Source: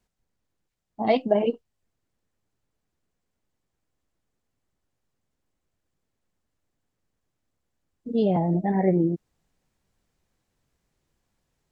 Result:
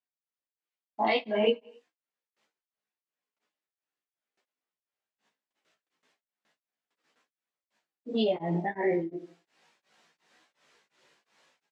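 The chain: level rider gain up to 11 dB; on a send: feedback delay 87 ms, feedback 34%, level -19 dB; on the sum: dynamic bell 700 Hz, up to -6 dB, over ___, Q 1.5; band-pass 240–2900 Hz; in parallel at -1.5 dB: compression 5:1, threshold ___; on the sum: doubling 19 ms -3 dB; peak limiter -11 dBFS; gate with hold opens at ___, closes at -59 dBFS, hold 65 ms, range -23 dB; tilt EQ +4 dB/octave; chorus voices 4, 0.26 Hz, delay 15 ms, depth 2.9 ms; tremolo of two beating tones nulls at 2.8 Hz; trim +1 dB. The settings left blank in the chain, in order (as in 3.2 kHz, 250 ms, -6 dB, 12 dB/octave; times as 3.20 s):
-28 dBFS, -25 dBFS, -58 dBFS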